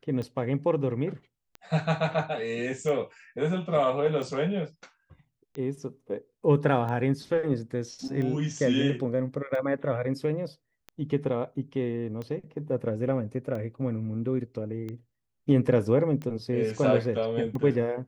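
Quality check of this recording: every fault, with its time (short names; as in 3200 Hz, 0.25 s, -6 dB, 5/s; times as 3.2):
tick 45 rpm -25 dBFS
8.08 gap 4.9 ms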